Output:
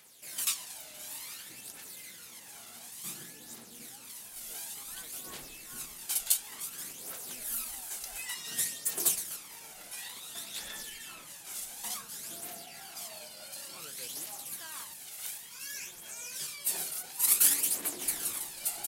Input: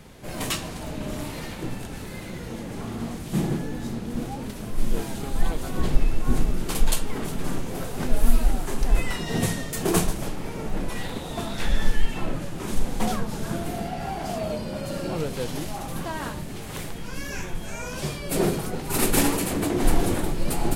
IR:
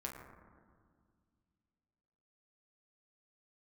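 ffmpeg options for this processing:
-af "aphaser=in_gain=1:out_gain=1:delay=1.5:decay=0.47:speed=0.51:type=triangular,aderivative,atempo=1.1"

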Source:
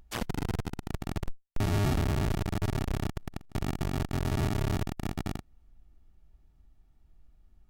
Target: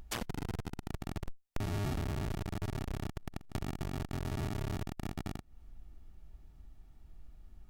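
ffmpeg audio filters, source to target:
ffmpeg -i in.wav -af "acompressor=threshold=-41dB:ratio=5,volume=6dB" out.wav

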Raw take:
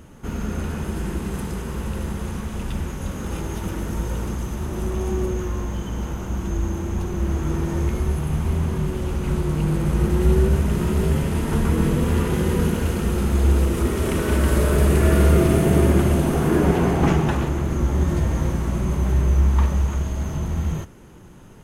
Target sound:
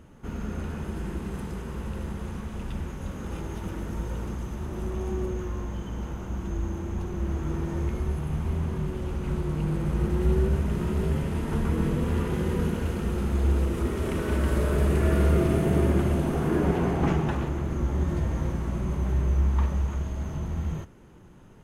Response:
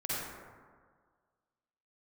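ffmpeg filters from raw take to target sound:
-af "highshelf=frequency=4800:gain=-7.5,volume=-6dB"

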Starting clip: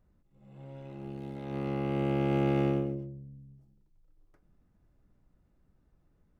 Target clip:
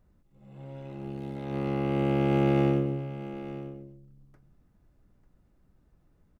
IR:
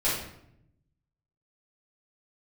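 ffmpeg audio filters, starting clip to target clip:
-af "aecho=1:1:894:0.2,volume=3.5dB"

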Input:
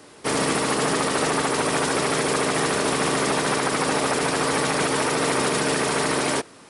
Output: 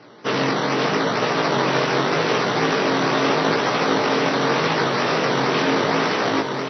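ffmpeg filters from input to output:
ffmpeg -i in.wav -filter_complex "[0:a]acrusher=samples=12:mix=1:aa=0.000001:lfo=1:lforange=12:lforate=2.1,asplit=2[link_01][link_02];[link_02]aecho=0:1:1131:0.501[link_03];[link_01][link_03]amix=inputs=2:normalize=0,flanger=delay=16.5:depth=6.7:speed=0.81,afftfilt=real='re*between(b*sr/4096,100,6000)':imag='im*between(b*sr/4096,100,6000)':win_size=4096:overlap=0.75,asplit=2[link_04][link_05];[link_05]adelay=340,highpass=300,lowpass=3400,asoftclip=type=hard:threshold=-20dB,volume=-14dB[link_06];[link_04][link_06]amix=inputs=2:normalize=0,volume=5dB" out.wav

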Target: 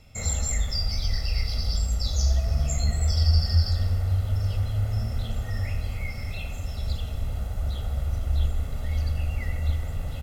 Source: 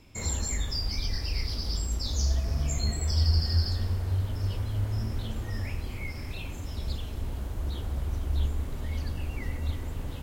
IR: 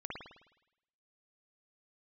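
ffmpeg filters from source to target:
-filter_complex "[0:a]aecho=1:1:1.5:0.71,asplit=2[link_01][link_02];[1:a]atrim=start_sample=2205,adelay=80[link_03];[link_02][link_03]afir=irnorm=-1:irlink=0,volume=-10dB[link_04];[link_01][link_04]amix=inputs=2:normalize=0"

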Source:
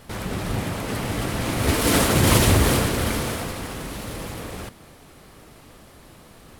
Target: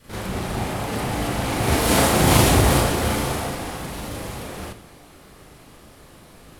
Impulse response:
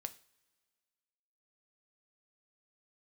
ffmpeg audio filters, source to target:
-filter_complex "[0:a]adynamicequalizer=threshold=0.00794:dfrequency=780:dqfactor=3:tfrequency=780:tqfactor=3:attack=5:release=100:ratio=0.375:range=3.5:mode=boostabove:tftype=bell,asplit=2[link_01][link_02];[1:a]atrim=start_sample=2205,asetrate=25578,aresample=44100,adelay=37[link_03];[link_02][link_03]afir=irnorm=-1:irlink=0,volume=4.5dB[link_04];[link_01][link_04]amix=inputs=2:normalize=0,volume=-5dB"

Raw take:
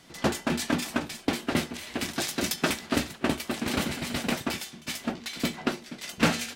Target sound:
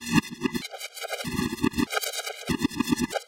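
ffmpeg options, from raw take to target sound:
ffmpeg -i in.wav -af "areverse,atempo=2,afftfilt=real='re*gt(sin(2*PI*0.8*pts/sr)*(1-2*mod(floor(b*sr/1024/410),2)),0)':imag='im*gt(sin(2*PI*0.8*pts/sr)*(1-2*mod(floor(b*sr/1024/410),2)),0)':win_size=1024:overlap=0.75,volume=4.5dB" out.wav

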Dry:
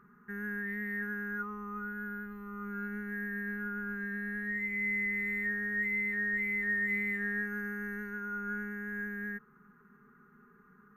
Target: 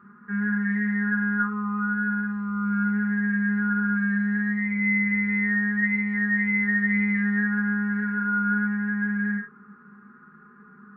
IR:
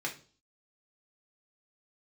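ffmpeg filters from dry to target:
-filter_complex "[0:a]acrossover=split=4200[link_01][link_02];[link_02]acrusher=bits=3:dc=4:mix=0:aa=0.000001[link_03];[link_01][link_03]amix=inputs=2:normalize=0[link_04];[1:a]atrim=start_sample=2205,afade=type=out:start_time=0.13:duration=0.01,atrim=end_sample=6174,asetrate=29988,aresample=44100[link_05];[link_04][link_05]afir=irnorm=-1:irlink=0,volume=3dB" -ar 48000 -c:a libvorbis -b:a 96k

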